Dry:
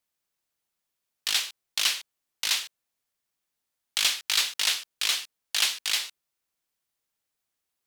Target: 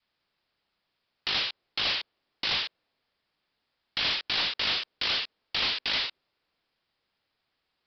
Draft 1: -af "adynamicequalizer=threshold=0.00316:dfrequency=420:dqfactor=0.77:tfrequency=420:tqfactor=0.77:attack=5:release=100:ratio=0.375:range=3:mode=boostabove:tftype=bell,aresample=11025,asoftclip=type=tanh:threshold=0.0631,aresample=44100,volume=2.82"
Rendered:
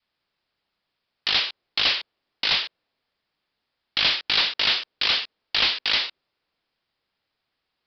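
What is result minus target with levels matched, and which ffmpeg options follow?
saturation: distortion -6 dB
-af "adynamicequalizer=threshold=0.00316:dfrequency=420:dqfactor=0.77:tfrequency=420:tqfactor=0.77:attack=5:release=100:ratio=0.375:range=3:mode=boostabove:tftype=bell,aresample=11025,asoftclip=type=tanh:threshold=0.02,aresample=44100,volume=2.82"

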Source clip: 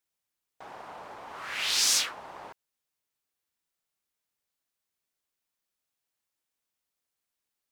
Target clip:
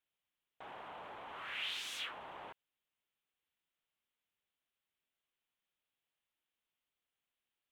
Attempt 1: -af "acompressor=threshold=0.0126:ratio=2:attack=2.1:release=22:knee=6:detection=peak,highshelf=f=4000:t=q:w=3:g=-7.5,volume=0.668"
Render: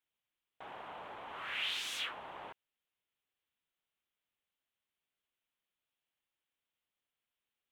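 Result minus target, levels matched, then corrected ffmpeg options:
compression: peak gain reduction -3.5 dB
-af "acompressor=threshold=0.00562:ratio=2:attack=2.1:release=22:knee=6:detection=peak,highshelf=f=4000:t=q:w=3:g=-7.5,volume=0.668"

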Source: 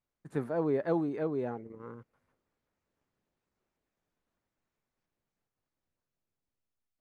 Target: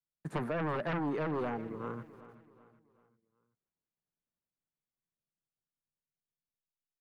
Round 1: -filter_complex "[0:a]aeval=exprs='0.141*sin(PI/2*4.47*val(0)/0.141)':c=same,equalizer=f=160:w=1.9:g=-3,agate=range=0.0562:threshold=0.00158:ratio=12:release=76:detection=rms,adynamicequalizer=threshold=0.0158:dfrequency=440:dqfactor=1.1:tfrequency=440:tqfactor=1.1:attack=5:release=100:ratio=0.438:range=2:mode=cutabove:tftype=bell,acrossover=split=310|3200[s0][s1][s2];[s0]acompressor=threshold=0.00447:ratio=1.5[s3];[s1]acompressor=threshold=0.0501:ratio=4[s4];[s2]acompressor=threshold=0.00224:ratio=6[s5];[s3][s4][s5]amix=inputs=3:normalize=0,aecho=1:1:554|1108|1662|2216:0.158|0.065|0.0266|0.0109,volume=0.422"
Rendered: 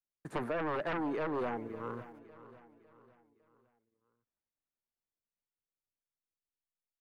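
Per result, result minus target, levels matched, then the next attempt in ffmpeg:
echo 173 ms late; 125 Hz band -6.5 dB
-filter_complex "[0:a]aeval=exprs='0.141*sin(PI/2*4.47*val(0)/0.141)':c=same,equalizer=f=160:w=1.9:g=-3,agate=range=0.0562:threshold=0.00158:ratio=12:release=76:detection=rms,adynamicequalizer=threshold=0.0158:dfrequency=440:dqfactor=1.1:tfrequency=440:tqfactor=1.1:attack=5:release=100:ratio=0.438:range=2:mode=cutabove:tftype=bell,acrossover=split=310|3200[s0][s1][s2];[s0]acompressor=threshold=0.00447:ratio=1.5[s3];[s1]acompressor=threshold=0.0501:ratio=4[s4];[s2]acompressor=threshold=0.00224:ratio=6[s5];[s3][s4][s5]amix=inputs=3:normalize=0,aecho=1:1:381|762|1143|1524:0.158|0.065|0.0266|0.0109,volume=0.422"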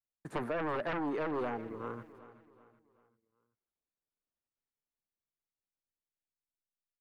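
125 Hz band -6.5 dB
-filter_complex "[0:a]aeval=exprs='0.141*sin(PI/2*4.47*val(0)/0.141)':c=same,equalizer=f=160:w=1.9:g=8.5,agate=range=0.0562:threshold=0.00158:ratio=12:release=76:detection=rms,adynamicequalizer=threshold=0.0158:dfrequency=440:dqfactor=1.1:tfrequency=440:tqfactor=1.1:attack=5:release=100:ratio=0.438:range=2:mode=cutabove:tftype=bell,acrossover=split=310|3200[s0][s1][s2];[s0]acompressor=threshold=0.00447:ratio=1.5[s3];[s1]acompressor=threshold=0.0501:ratio=4[s4];[s2]acompressor=threshold=0.00224:ratio=6[s5];[s3][s4][s5]amix=inputs=3:normalize=0,aecho=1:1:381|762|1143|1524:0.158|0.065|0.0266|0.0109,volume=0.422"

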